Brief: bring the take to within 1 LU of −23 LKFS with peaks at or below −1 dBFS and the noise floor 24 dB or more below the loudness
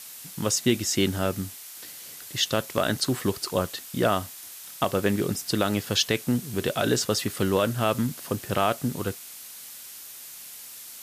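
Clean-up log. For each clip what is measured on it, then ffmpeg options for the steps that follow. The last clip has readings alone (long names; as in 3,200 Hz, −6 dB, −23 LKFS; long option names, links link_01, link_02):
background noise floor −43 dBFS; target noise floor −50 dBFS; integrated loudness −26.0 LKFS; sample peak −9.0 dBFS; target loudness −23.0 LKFS
→ -af "afftdn=noise_reduction=7:noise_floor=-43"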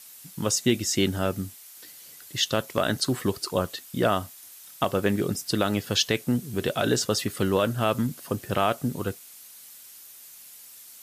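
background noise floor −48 dBFS; target noise floor −51 dBFS
→ -af "afftdn=noise_reduction=6:noise_floor=-48"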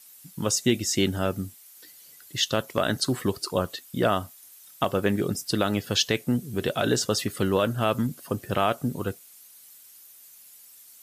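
background noise floor −51 dBFS; integrated loudness −26.5 LKFS; sample peak −9.5 dBFS; target loudness −23.0 LKFS
→ -af "volume=3.5dB"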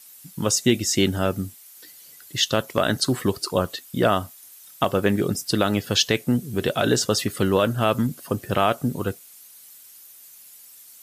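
integrated loudness −23.0 LKFS; sample peak −6.0 dBFS; background noise floor −47 dBFS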